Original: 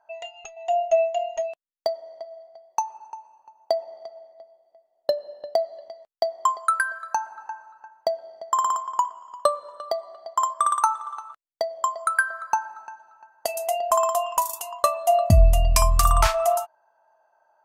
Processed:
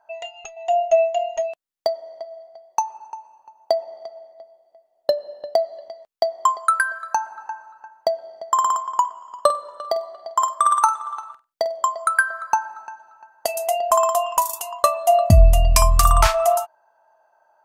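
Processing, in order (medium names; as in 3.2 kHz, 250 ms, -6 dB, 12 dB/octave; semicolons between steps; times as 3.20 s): 9.25–11.88 s: flutter echo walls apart 8.3 m, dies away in 0.24 s; trim +3.5 dB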